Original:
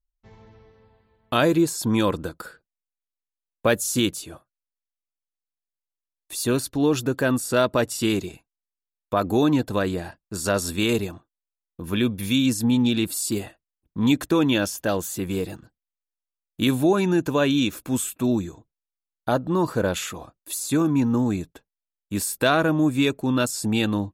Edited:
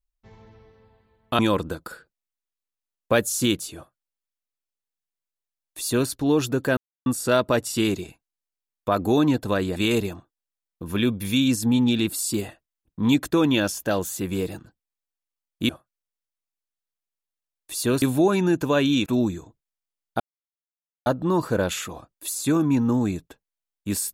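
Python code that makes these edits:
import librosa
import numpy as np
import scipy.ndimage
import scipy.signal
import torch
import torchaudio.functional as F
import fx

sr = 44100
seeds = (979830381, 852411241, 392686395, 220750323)

y = fx.edit(x, sr, fx.cut(start_s=1.39, length_s=0.54),
    fx.duplicate(start_s=4.3, length_s=2.33, to_s=16.67),
    fx.insert_silence(at_s=7.31, length_s=0.29),
    fx.cut(start_s=10.01, length_s=0.73),
    fx.cut(start_s=17.71, length_s=0.46),
    fx.insert_silence(at_s=19.31, length_s=0.86), tone=tone)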